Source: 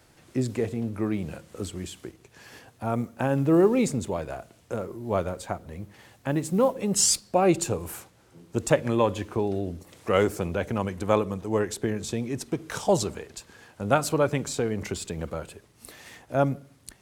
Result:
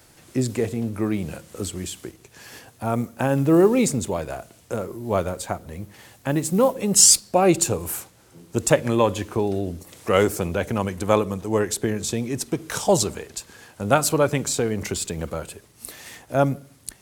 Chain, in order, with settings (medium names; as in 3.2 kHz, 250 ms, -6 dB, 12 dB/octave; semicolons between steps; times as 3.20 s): treble shelf 5.7 kHz +8.5 dB; trim +3.5 dB